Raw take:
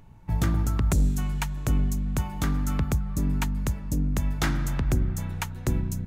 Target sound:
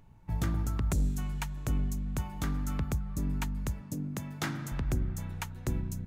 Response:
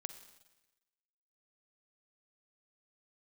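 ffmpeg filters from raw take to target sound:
-filter_complex "[0:a]asettb=1/sr,asplit=3[s0][s1][s2];[s0]atrim=end=3.814[s3];[s1]atrim=start=3.81:end=4.72,asetpts=PTS-STARTPTS,afade=t=in:d=0.004:c=qsin,afade=t=out:st=0.906:d=0.004:c=qsin,highpass=f=110:w=0.5412,highpass=f=110:w=1.3066[s4];[s2]atrim=start=4.716[s5];[s3][s4]acrossfade=d=0.004:c1=hsin:c2=qsin[s6];[s6][s5]acrossfade=d=0.004:c1=qsin:c2=hsin,volume=0.473"

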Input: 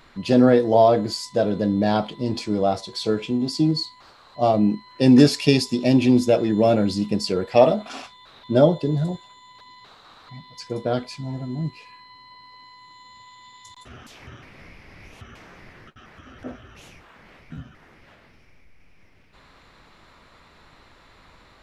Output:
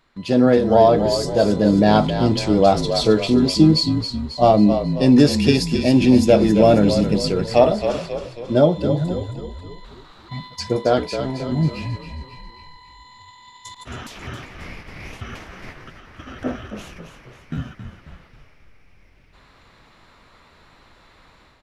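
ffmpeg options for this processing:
-filter_complex "[0:a]agate=range=0.316:threshold=0.00562:ratio=16:detection=peak,dynaudnorm=f=330:g=3:m=3.55,asettb=1/sr,asplit=3[s0][s1][s2];[s0]atrim=end=10.764[s3];[s1]atrim=start=10.76:end=11.52,asetpts=PTS-STARTPTS,afade=t=in:d=0.004:c=qsin,afade=t=out:st=0.756:d=0.004:c=qsin,bass=f=250:g=-8,treble=f=4000:g=-4[s4];[s2]atrim=start=11.516[s5];[s3][s4]acrossfade=d=0.004:c1=hsin:c2=qsin[s6];[s6][s5]acrossfade=d=0.004:c1=qsin:c2=hsin,asplit=2[s7][s8];[s8]asplit=6[s9][s10][s11][s12][s13][s14];[s9]adelay=270,afreqshift=-42,volume=0.376[s15];[s10]adelay=540,afreqshift=-84,volume=0.188[s16];[s11]adelay=810,afreqshift=-126,volume=0.0944[s17];[s12]adelay=1080,afreqshift=-168,volume=0.0468[s18];[s13]adelay=1350,afreqshift=-210,volume=0.0234[s19];[s14]adelay=1620,afreqshift=-252,volume=0.0117[s20];[s15][s16][s17][s18][s19][s20]amix=inputs=6:normalize=0[s21];[s7][s21]amix=inputs=2:normalize=0,volume=0.891"

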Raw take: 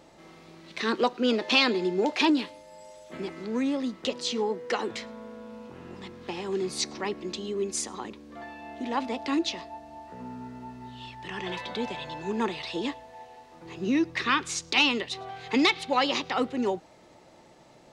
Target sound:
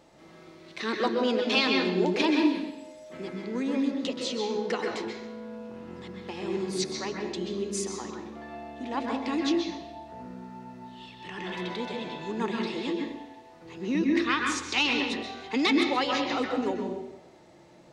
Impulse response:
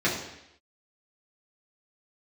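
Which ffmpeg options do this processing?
-filter_complex "[0:a]asplit=2[s0][s1];[1:a]atrim=start_sample=2205,asetrate=42336,aresample=44100,adelay=123[s2];[s1][s2]afir=irnorm=-1:irlink=0,volume=0.188[s3];[s0][s3]amix=inputs=2:normalize=0,volume=0.668"

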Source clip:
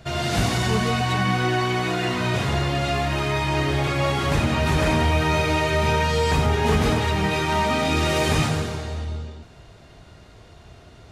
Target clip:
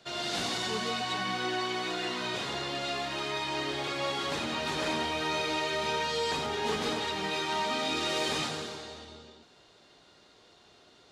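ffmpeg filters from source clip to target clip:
-filter_complex "[0:a]aexciter=amount=1.8:drive=7.6:freq=3300,acrossover=split=220 6700:gain=0.0891 1 0.112[s0][s1][s2];[s0][s1][s2]amix=inputs=3:normalize=0,bandreject=f=660:w=12,volume=0.376"

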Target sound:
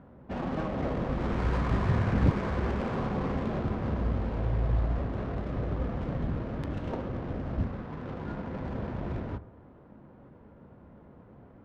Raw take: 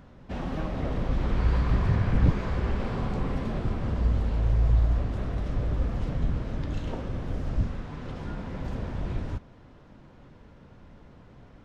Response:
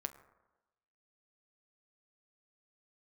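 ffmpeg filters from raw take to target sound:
-filter_complex "[0:a]adynamicsmooth=sensitivity=8:basefreq=1100,highpass=f=210:p=1,asplit=2[s0][s1];[1:a]atrim=start_sample=2205,lowshelf=f=190:g=5[s2];[s1][s2]afir=irnorm=-1:irlink=0,volume=1.26[s3];[s0][s3]amix=inputs=2:normalize=0,volume=0.668"

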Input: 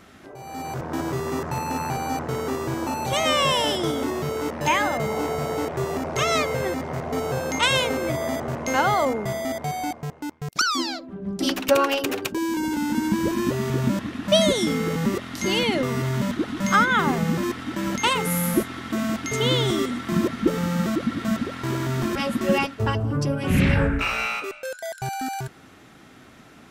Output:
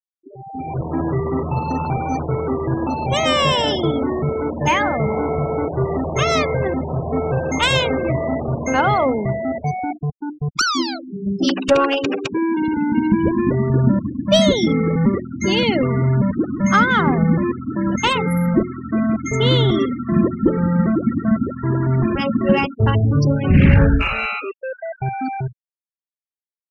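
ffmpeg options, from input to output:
-af "adynamicsmooth=sensitivity=5:basefreq=4600,highshelf=f=4800:g=2.5,bandreject=f=60:t=h:w=6,bandreject=f=120:t=h:w=6,bandreject=f=180:t=h:w=6,bandreject=f=240:t=h:w=6,bandreject=f=300:t=h:w=6,bandreject=f=360:t=h:w=6,afftfilt=real='re*gte(hypot(re,im),0.0501)':imag='im*gte(hypot(re,im),0.0501)':win_size=1024:overlap=0.75,acontrast=51,lowshelf=f=250:g=8,volume=0.75"

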